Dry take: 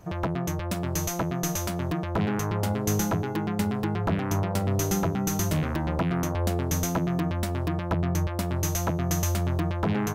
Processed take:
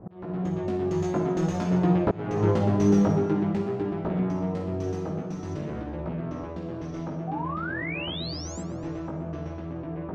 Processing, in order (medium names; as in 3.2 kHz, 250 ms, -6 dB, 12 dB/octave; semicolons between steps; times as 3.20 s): Doppler pass-by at 2.21 s, 17 m/s, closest 12 m; level-controlled noise filter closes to 940 Hz, open at -34 dBFS; peaking EQ 310 Hz +11.5 dB 2.6 oct; Schroeder reverb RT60 0.92 s, DRR 2 dB; in parallel at -2.5 dB: compressor with a negative ratio -40 dBFS, ratio -1; on the sum: painted sound rise, 7.27–8.62 s, 740–7800 Hz -30 dBFS; chorus 0.48 Hz, delay 16.5 ms, depth 3.1 ms; slow attack 378 ms; distance through air 140 m; on a send: thinning echo 123 ms, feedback 58%, level -19.5 dB